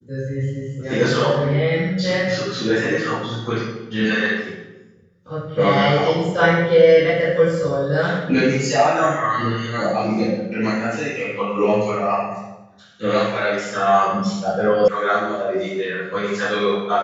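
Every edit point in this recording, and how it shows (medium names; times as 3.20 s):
14.88 s: sound stops dead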